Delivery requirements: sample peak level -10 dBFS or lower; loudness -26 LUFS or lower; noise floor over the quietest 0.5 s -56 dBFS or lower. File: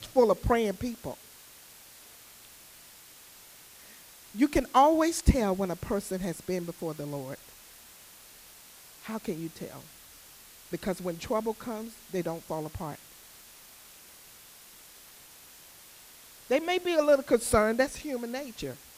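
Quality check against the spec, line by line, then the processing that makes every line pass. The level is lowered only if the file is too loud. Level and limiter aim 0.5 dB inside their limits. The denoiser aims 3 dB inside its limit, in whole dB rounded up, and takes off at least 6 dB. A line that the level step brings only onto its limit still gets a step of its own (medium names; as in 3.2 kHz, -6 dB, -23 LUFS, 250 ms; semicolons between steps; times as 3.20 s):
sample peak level -8.5 dBFS: fail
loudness -29.0 LUFS: pass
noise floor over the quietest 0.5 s -52 dBFS: fail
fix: noise reduction 7 dB, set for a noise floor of -52 dBFS; peak limiter -10.5 dBFS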